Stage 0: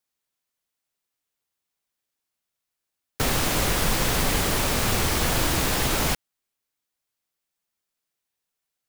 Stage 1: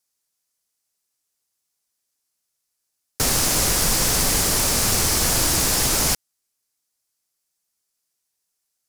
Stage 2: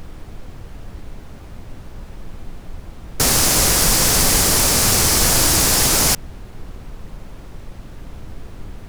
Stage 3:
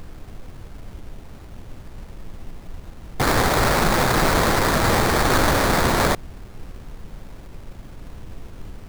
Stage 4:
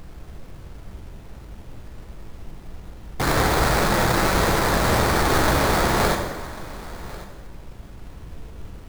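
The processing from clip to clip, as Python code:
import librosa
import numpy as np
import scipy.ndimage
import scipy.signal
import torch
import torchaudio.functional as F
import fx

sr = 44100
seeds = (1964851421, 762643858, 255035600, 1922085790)

y1 = fx.band_shelf(x, sr, hz=7600.0, db=9.5, octaves=1.7)
y2 = fx.dmg_noise_colour(y1, sr, seeds[0], colour='brown', level_db=-36.0)
y2 = y2 * librosa.db_to_amplitude(4.5)
y3 = fx.sample_hold(y2, sr, seeds[1], rate_hz=2900.0, jitter_pct=20)
y3 = y3 * librosa.db_to_amplitude(-3.0)
y4 = y3 + 10.0 ** (-18.5 / 20.0) * np.pad(y3, (int(1094 * sr / 1000.0), 0))[:len(y3)]
y4 = fx.rev_plate(y4, sr, seeds[2], rt60_s=1.5, hf_ratio=0.75, predelay_ms=0, drr_db=3.0)
y4 = y4 * librosa.db_to_amplitude(-3.0)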